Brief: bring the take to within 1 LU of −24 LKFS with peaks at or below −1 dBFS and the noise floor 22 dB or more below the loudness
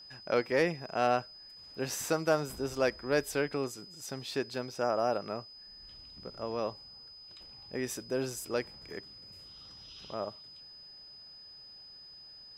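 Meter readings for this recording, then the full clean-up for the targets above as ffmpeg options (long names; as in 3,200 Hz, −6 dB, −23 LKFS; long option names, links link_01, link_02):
interfering tone 5,000 Hz; level of the tone −49 dBFS; integrated loudness −33.5 LKFS; sample peak −15.0 dBFS; target loudness −24.0 LKFS
→ -af "bandreject=frequency=5000:width=30"
-af "volume=9.5dB"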